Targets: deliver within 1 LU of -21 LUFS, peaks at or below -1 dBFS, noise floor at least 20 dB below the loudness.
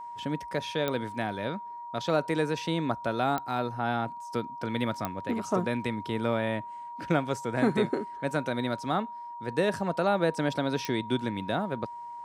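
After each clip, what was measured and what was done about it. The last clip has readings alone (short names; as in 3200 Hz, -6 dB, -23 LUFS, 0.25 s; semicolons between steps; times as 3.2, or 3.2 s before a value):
clicks 4; steady tone 950 Hz; tone level -38 dBFS; loudness -30.5 LUFS; peak -10.5 dBFS; loudness target -21.0 LUFS
-> de-click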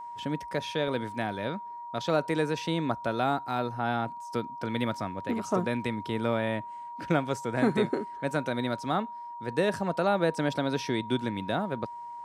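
clicks 0; steady tone 950 Hz; tone level -38 dBFS
-> notch 950 Hz, Q 30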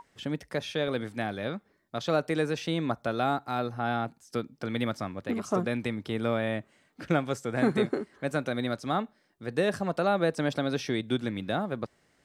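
steady tone none; loudness -30.5 LUFS; peak -11.5 dBFS; loudness target -21.0 LUFS
-> gain +9.5 dB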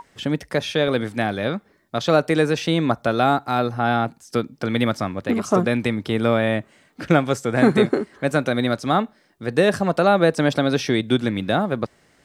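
loudness -21.0 LUFS; peak -2.0 dBFS; noise floor -59 dBFS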